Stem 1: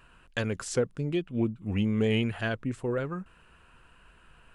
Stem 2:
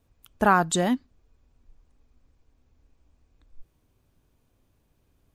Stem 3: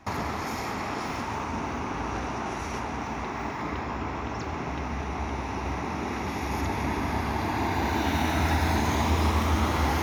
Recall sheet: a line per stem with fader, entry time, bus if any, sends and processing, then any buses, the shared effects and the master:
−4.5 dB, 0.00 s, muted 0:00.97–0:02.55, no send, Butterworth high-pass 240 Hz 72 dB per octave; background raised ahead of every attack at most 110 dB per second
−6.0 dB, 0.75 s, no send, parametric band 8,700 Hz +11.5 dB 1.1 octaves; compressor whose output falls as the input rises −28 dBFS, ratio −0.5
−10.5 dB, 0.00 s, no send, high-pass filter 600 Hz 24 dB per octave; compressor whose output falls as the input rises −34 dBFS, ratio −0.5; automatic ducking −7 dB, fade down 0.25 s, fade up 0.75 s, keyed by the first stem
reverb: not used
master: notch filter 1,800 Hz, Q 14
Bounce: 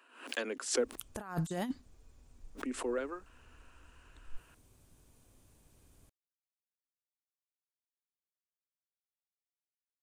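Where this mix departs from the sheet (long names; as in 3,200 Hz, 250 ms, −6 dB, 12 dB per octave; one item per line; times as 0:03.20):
stem 3: muted
master: missing notch filter 1,800 Hz, Q 14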